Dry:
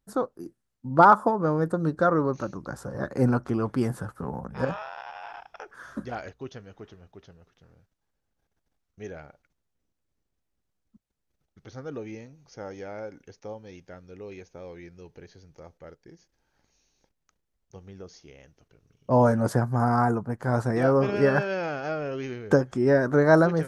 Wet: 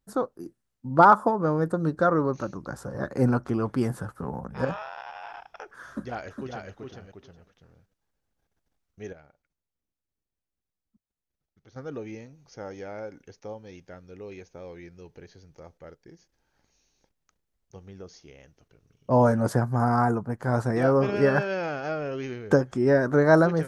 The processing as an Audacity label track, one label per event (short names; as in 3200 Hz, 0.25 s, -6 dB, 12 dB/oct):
5.890000	6.700000	echo throw 0.41 s, feedback 15%, level -4 dB
9.130000	11.760000	gain -9.5 dB